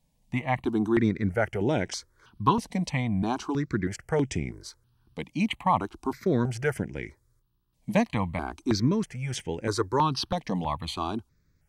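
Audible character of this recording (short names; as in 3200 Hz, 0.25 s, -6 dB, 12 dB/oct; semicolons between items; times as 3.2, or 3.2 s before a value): notches that jump at a steady rate 3.1 Hz 370–4200 Hz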